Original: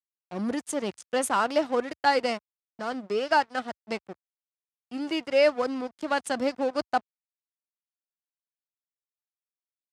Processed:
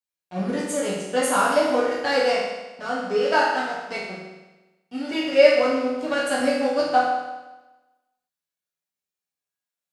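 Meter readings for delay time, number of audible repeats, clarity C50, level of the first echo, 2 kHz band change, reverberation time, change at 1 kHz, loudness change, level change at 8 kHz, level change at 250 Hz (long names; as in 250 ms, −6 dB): no echo audible, no echo audible, 0.5 dB, no echo audible, +6.0 dB, 1.1 s, +4.5 dB, +5.5 dB, +5.5 dB, +4.5 dB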